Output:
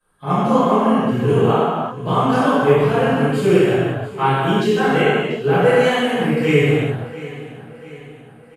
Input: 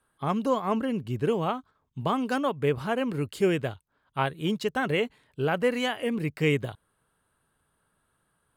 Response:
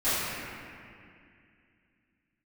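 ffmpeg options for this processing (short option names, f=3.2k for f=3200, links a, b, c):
-filter_complex "[0:a]aecho=1:1:688|1376|2064|2752:0.141|0.0706|0.0353|0.0177[a];[1:a]atrim=start_sample=2205,afade=t=out:st=0.3:d=0.01,atrim=end_sample=13671,asetrate=28224,aresample=44100[b];[a][b]afir=irnorm=-1:irlink=0,volume=-5dB"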